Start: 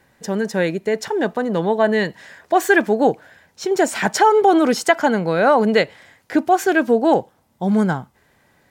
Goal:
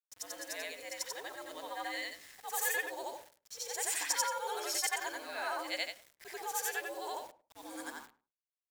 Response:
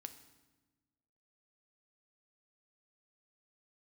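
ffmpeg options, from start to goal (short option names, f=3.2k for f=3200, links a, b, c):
-filter_complex "[0:a]afftfilt=real='re':imag='-im':win_size=8192:overlap=0.75,afreqshift=100,aderivative,bandreject=f=292.2:t=h:w=4,bandreject=f=584.4:t=h:w=4,bandreject=f=876.6:t=h:w=4,bandreject=f=1.1688k:t=h:w=4,bandreject=f=1.461k:t=h:w=4,bandreject=f=1.7532k:t=h:w=4,acrusher=bits=8:mix=0:aa=0.000001,asplit=2[a][b];[b]adelay=104,lowpass=f=1.1k:p=1,volume=-15.5dB,asplit=2[c][d];[d]adelay=104,lowpass=f=1.1k:p=1,volume=0.18[e];[a][c][e]amix=inputs=3:normalize=0"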